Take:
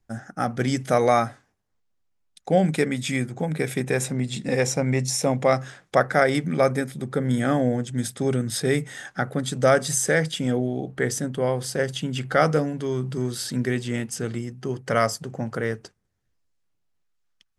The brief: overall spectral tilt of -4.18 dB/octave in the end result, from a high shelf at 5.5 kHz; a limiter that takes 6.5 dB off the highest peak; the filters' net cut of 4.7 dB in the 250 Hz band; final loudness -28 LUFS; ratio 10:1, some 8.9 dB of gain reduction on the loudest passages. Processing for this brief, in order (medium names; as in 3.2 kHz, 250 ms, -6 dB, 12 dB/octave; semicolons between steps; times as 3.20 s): peaking EQ 250 Hz -6 dB; treble shelf 5.5 kHz +3.5 dB; compression 10:1, threshold -23 dBFS; trim +2.5 dB; peak limiter -15.5 dBFS